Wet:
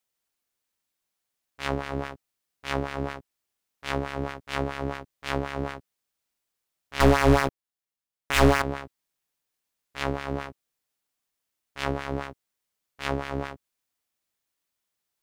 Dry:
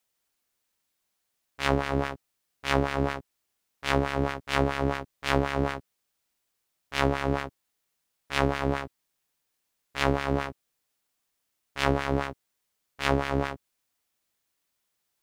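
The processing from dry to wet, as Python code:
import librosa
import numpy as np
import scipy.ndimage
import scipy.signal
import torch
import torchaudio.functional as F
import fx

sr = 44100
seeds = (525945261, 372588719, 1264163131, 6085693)

y = fx.leveller(x, sr, passes=5, at=(7.0, 8.62))
y = F.gain(torch.from_numpy(y), -4.0).numpy()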